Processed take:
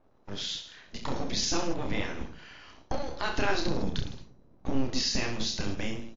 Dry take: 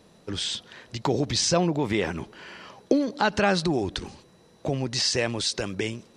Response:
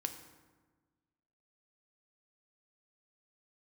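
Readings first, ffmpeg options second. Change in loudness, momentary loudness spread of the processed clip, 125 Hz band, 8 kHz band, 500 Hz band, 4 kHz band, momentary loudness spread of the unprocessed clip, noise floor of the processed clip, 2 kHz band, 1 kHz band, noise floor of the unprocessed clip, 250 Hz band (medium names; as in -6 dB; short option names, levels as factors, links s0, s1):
-6.5 dB, 15 LU, -6.5 dB, -5.5 dB, -9.0 dB, -4.5 dB, 16 LU, -59 dBFS, -5.0 dB, -6.5 dB, -57 dBFS, -6.5 dB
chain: -filter_complex "[0:a]aecho=1:1:30|66|109.2|161|223.2:0.631|0.398|0.251|0.158|0.1,asubboost=boost=9:cutoff=130,acrossover=split=930[s0][s1];[s0]aeval=exprs='abs(val(0))':c=same[s2];[s1]agate=range=0.0224:threshold=0.00355:ratio=3:detection=peak[s3];[s2][s3]amix=inputs=2:normalize=0,volume=0.473" -ar 16000 -c:a libmp3lame -b:a 40k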